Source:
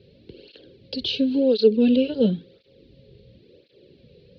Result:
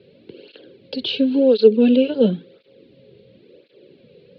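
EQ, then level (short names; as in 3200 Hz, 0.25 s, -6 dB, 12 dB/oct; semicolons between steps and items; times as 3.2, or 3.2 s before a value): BPF 180–3400 Hz; bell 1200 Hz +5 dB 1.5 oct; notch 1800 Hz, Q 25; +4.0 dB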